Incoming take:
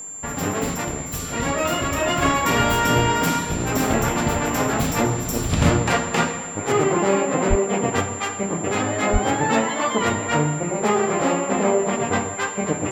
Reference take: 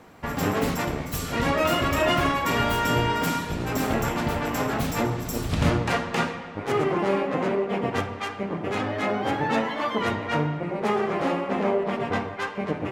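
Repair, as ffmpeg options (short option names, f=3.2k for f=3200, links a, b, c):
-filter_complex "[0:a]bandreject=f=7.3k:w=30,asplit=3[a][b][c];[a]afade=t=out:st=7.49:d=0.02[d];[b]highpass=f=140:w=0.5412,highpass=f=140:w=1.3066,afade=t=in:st=7.49:d=0.02,afade=t=out:st=7.61:d=0.02[e];[c]afade=t=in:st=7.61:d=0.02[f];[d][e][f]amix=inputs=3:normalize=0,asplit=3[g][h][i];[g]afade=t=out:st=9.12:d=0.02[j];[h]highpass=f=140:w=0.5412,highpass=f=140:w=1.3066,afade=t=in:st=9.12:d=0.02,afade=t=out:st=9.24:d=0.02[k];[i]afade=t=in:st=9.24:d=0.02[l];[j][k][l]amix=inputs=3:normalize=0,asetnsamples=n=441:p=0,asendcmd='2.22 volume volume -4.5dB',volume=0dB"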